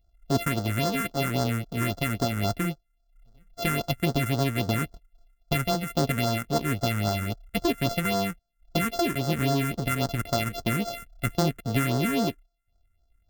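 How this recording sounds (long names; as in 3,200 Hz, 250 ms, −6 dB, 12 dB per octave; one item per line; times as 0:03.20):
a buzz of ramps at a fixed pitch in blocks of 64 samples
phaser sweep stages 4, 3.7 Hz, lowest notch 690–2,400 Hz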